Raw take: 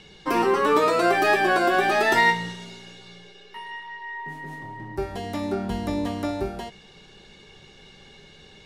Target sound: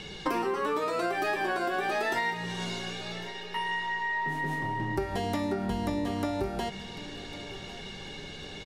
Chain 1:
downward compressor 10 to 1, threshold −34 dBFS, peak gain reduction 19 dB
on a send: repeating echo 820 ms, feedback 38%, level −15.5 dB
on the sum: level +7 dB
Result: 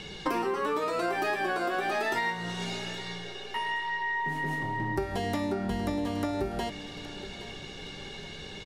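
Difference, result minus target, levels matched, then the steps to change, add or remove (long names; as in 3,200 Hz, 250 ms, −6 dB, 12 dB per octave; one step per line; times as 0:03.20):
echo 282 ms early
change: repeating echo 1,102 ms, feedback 38%, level −15.5 dB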